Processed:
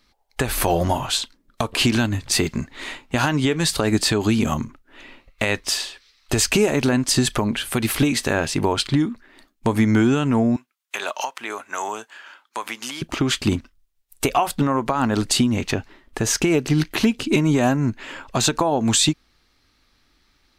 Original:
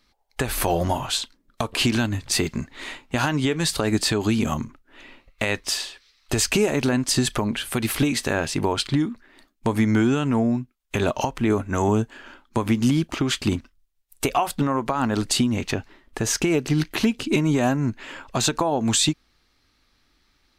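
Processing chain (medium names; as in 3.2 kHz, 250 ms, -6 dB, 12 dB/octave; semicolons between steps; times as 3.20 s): 10.56–13.02 s: high-pass 900 Hz 12 dB/octave; trim +2.5 dB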